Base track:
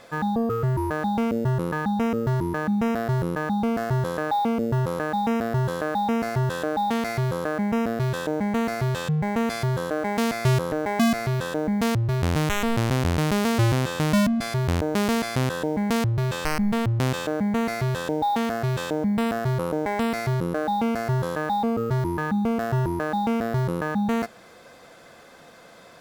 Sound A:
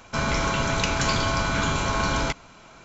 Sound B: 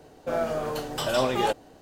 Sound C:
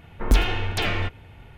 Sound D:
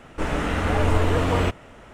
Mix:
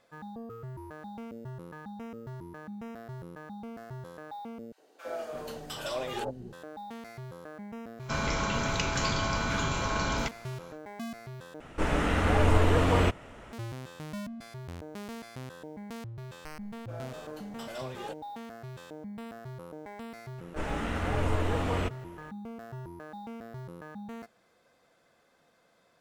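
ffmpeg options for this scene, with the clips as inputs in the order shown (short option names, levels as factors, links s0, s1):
-filter_complex "[2:a]asplit=2[s0][s1];[4:a]asplit=2[s2][s3];[0:a]volume=0.119[s4];[s0]acrossover=split=280|940[s5][s6][s7];[s6]adelay=60[s8];[s5]adelay=340[s9];[s9][s8][s7]amix=inputs=3:normalize=0[s10];[s4]asplit=3[s11][s12][s13];[s11]atrim=end=4.724[s14];[s10]atrim=end=1.81,asetpts=PTS-STARTPTS,volume=0.398[s15];[s12]atrim=start=6.526:end=11.604[s16];[s2]atrim=end=1.93,asetpts=PTS-STARTPTS,volume=0.75[s17];[s13]atrim=start=13.526[s18];[1:a]atrim=end=2.84,asetpts=PTS-STARTPTS,volume=0.501,afade=t=in:d=0.1,afade=t=out:st=2.74:d=0.1,adelay=7960[s19];[s1]atrim=end=1.81,asetpts=PTS-STARTPTS,volume=0.158,afade=t=in:d=0.004:c=hsin,afade=t=out:st=1.806:d=0.004:c=hsin,adelay=16610[s20];[s3]atrim=end=1.93,asetpts=PTS-STARTPTS,volume=0.376,afade=t=in:d=0.004:c=hsin,afade=t=out:st=1.926:d=0.004:c=hsin,adelay=20380[s21];[s14][s15]acrossfade=d=0.004:c1=hsin:c2=hsin[s22];[s22][s16]acrossfade=d=0.004:c1=hsin:c2=hsin[s23];[s23][s17]acrossfade=d=0.004:c1=hsin:c2=hsin[s24];[s24][s18]acrossfade=d=0.004:c1=hsin:c2=hsin[s25];[s25][s19][s20][s21]amix=inputs=4:normalize=0"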